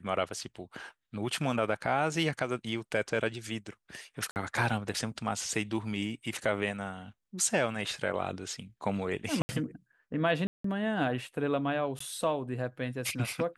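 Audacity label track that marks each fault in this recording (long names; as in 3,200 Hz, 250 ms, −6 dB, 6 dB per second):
4.310000	4.360000	drop-out 49 ms
9.420000	9.490000	drop-out 70 ms
10.470000	10.640000	drop-out 174 ms
11.990000	12.000000	drop-out 14 ms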